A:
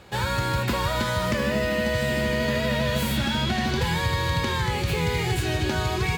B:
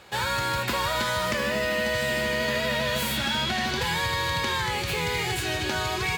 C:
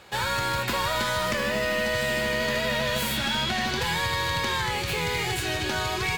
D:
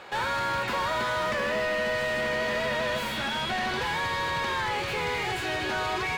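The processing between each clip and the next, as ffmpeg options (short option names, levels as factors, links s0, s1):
-af "lowshelf=f=410:g=-11,volume=1.26"
-af "aeval=exprs='0.224*(cos(1*acos(clip(val(0)/0.224,-1,1)))-cos(1*PI/2))+0.0447*(cos(2*acos(clip(val(0)/0.224,-1,1)))-cos(2*PI/2))':c=same,aeval=exprs='0.168*(abs(mod(val(0)/0.168+3,4)-2)-1)':c=same"
-filter_complex "[0:a]asplit=2[s0][s1];[s1]highpass=f=720:p=1,volume=10,asoftclip=type=tanh:threshold=0.178[s2];[s0][s2]amix=inputs=2:normalize=0,lowpass=f=1300:p=1,volume=0.501,volume=0.668"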